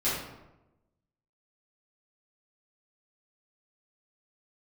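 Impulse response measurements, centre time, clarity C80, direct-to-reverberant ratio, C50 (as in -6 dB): 62 ms, 4.5 dB, -12.5 dB, 0.5 dB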